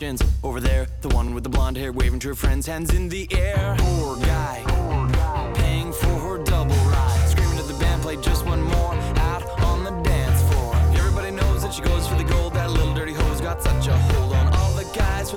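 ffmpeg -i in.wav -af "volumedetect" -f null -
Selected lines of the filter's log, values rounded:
mean_volume: -19.9 dB
max_volume: -10.6 dB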